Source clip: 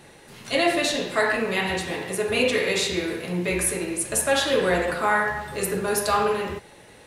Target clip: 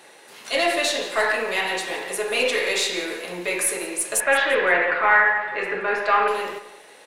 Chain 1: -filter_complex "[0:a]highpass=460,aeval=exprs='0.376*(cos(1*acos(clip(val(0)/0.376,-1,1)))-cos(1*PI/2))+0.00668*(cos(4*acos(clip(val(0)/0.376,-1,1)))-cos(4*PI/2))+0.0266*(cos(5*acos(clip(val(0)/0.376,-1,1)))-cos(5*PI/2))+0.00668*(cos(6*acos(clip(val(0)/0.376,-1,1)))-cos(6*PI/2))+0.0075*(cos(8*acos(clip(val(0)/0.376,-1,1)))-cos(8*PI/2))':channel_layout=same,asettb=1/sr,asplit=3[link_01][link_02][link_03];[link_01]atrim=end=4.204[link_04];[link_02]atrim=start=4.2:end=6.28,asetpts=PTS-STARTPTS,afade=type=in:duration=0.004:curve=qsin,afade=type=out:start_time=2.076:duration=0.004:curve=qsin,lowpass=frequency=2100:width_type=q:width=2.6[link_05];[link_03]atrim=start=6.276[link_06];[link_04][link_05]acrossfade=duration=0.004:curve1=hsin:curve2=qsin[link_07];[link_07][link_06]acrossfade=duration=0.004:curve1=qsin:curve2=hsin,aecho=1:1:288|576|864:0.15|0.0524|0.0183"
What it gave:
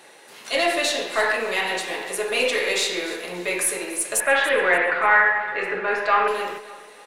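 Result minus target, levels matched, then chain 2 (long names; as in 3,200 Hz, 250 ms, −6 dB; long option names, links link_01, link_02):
echo 116 ms late
-filter_complex "[0:a]highpass=460,aeval=exprs='0.376*(cos(1*acos(clip(val(0)/0.376,-1,1)))-cos(1*PI/2))+0.00668*(cos(4*acos(clip(val(0)/0.376,-1,1)))-cos(4*PI/2))+0.0266*(cos(5*acos(clip(val(0)/0.376,-1,1)))-cos(5*PI/2))+0.00668*(cos(6*acos(clip(val(0)/0.376,-1,1)))-cos(6*PI/2))+0.0075*(cos(8*acos(clip(val(0)/0.376,-1,1)))-cos(8*PI/2))':channel_layout=same,asettb=1/sr,asplit=3[link_01][link_02][link_03];[link_01]atrim=end=4.204[link_04];[link_02]atrim=start=4.2:end=6.28,asetpts=PTS-STARTPTS,afade=type=in:duration=0.004:curve=qsin,afade=type=out:start_time=2.076:duration=0.004:curve=qsin,lowpass=frequency=2100:width_type=q:width=2.6[link_05];[link_03]atrim=start=6.276[link_06];[link_04][link_05]acrossfade=duration=0.004:curve1=hsin:curve2=qsin[link_07];[link_07][link_06]acrossfade=duration=0.004:curve1=qsin:curve2=hsin,aecho=1:1:172|344|516:0.15|0.0524|0.0183"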